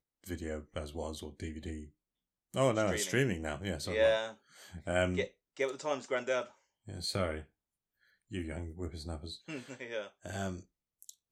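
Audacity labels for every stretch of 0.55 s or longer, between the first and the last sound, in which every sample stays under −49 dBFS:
1.890000	2.540000	silence
7.430000	8.310000	silence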